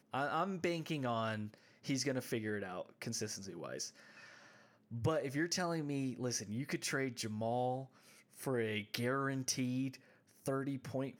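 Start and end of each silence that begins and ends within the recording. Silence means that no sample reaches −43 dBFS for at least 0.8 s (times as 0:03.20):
0:03.88–0:04.91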